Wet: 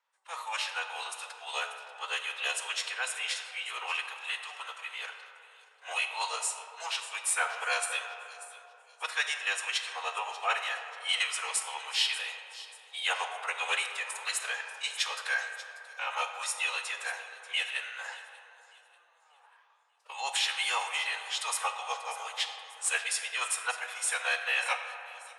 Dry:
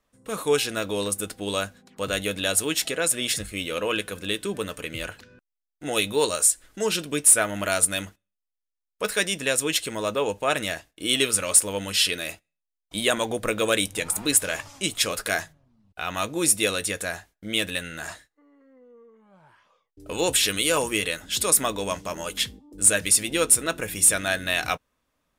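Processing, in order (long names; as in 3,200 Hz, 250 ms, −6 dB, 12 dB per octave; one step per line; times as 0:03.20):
Butterworth high-pass 680 Hz 72 dB per octave
high-shelf EQ 5,200 Hz −5 dB
phase-vocoder pitch shift with formants kept −5 semitones
high-frequency loss of the air 60 metres
delay with a high-pass on its return 588 ms, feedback 36%, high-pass 3,800 Hz, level −14 dB
on a send at −6 dB: convolution reverb RT60 3.3 s, pre-delay 4 ms
on the sum: level −2 dB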